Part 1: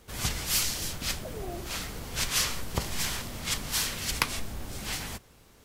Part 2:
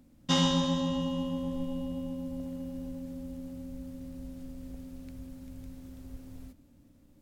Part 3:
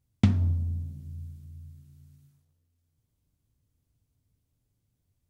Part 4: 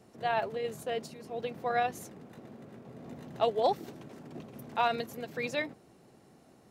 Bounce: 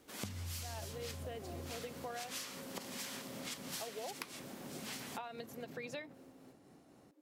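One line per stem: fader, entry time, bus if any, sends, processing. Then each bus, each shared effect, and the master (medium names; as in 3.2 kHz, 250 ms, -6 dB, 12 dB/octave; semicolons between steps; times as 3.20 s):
-7.0 dB, 0.00 s, no bus, no send, elliptic high-pass 180 Hz
0.0 dB, 0.00 s, bus A, no send, Chebyshev high-pass 280 Hz, order 6; treble shelf 2.1 kHz -9.5 dB; compression, threshold -46 dBFS, peak gain reduction 16 dB
+0.5 dB, 0.00 s, bus A, no send, none
-2.5 dB, 0.40 s, bus A, no send, none
bus A: 0.0 dB, tremolo triangle 3.9 Hz, depth 35%; compression 2.5:1, threshold -35 dBFS, peak gain reduction 12.5 dB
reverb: none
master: compression 6:1, threshold -41 dBFS, peak gain reduction 14 dB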